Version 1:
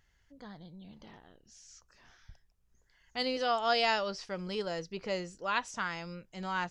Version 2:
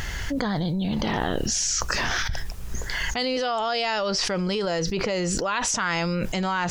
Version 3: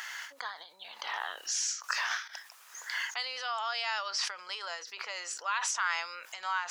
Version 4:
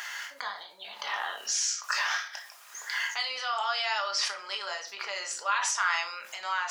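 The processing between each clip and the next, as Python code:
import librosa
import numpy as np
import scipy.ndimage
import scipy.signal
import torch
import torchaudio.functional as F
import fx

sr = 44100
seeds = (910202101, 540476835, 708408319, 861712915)

y1 = fx.env_flatten(x, sr, amount_pct=100)
y2 = fx.ladder_highpass(y1, sr, hz=870.0, resonance_pct=30)
y2 = fx.end_taper(y2, sr, db_per_s=130.0)
y3 = fx.room_shoebox(y2, sr, seeds[0], volume_m3=320.0, walls='furnished', distance_m=1.3)
y3 = F.gain(torch.from_numpy(y3), 2.0).numpy()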